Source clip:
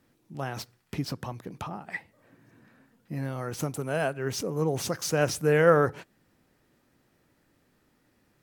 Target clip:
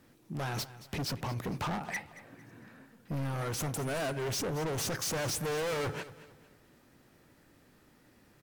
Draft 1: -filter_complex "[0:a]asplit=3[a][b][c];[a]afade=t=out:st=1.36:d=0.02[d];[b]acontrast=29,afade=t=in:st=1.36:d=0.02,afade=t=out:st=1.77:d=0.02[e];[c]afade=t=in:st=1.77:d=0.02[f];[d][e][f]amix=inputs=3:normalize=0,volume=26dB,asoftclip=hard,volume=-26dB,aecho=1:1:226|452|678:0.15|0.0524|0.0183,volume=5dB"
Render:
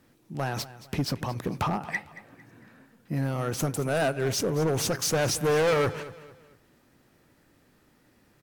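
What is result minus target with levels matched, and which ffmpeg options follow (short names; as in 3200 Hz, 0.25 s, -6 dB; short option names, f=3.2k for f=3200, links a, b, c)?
overloaded stage: distortion -5 dB
-filter_complex "[0:a]asplit=3[a][b][c];[a]afade=t=out:st=1.36:d=0.02[d];[b]acontrast=29,afade=t=in:st=1.36:d=0.02,afade=t=out:st=1.77:d=0.02[e];[c]afade=t=in:st=1.77:d=0.02[f];[d][e][f]amix=inputs=3:normalize=0,volume=37dB,asoftclip=hard,volume=-37dB,aecho=1:1:226|452|678:0.15|0.0524|0.0183,volume=5dB"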